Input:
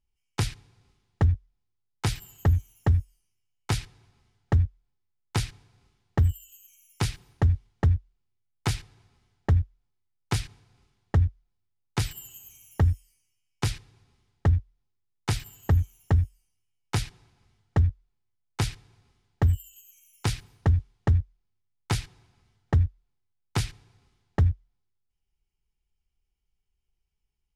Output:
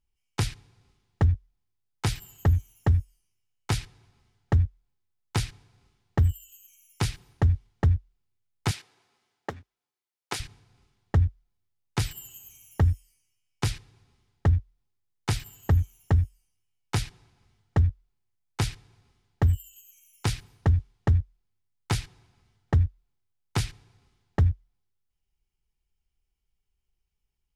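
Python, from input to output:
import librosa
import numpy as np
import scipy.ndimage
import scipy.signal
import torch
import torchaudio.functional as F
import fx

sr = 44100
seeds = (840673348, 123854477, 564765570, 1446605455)

y = fx.highpass(x, sr, hz=370.0, slope=12, at=(8.71, 10.4))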